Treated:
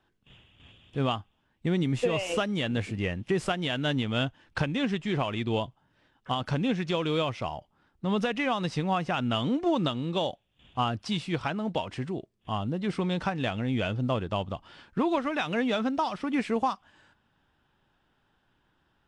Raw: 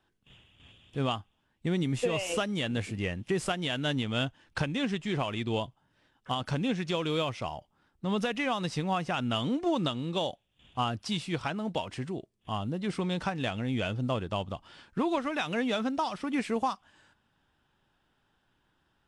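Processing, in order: high shelf 7300 Hz -11.5 dB; gain +2.5 dB

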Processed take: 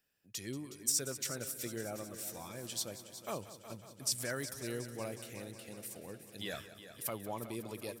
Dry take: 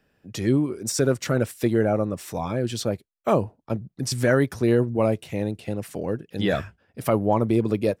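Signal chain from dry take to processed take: pre-emphasis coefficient 0.9; on a send: multi-head echo 0.183 s, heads first and second, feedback 65%, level -15 dB; on the sum: gain -2.5 dB

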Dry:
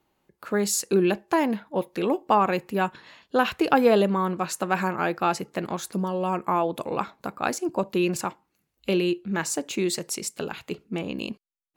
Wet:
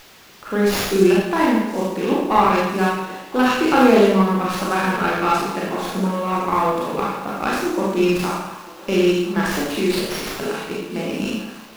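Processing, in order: HPF 140 Hz; Schroeder reverb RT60 0.89 s, combs from 28 ms, DRR -6 dB; in parallel at -9 dB: requantised 6-bit, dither triangular; on the sum: dynamic EQ 640 Hz, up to -6 dB, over -27 dBFS, Q 2; on a send: thinning echo 1.014 s, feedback 73%, high-pass 380 Hz, level -19 dB; on the sum: running maximum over 5 samples; gain -1.5 dB

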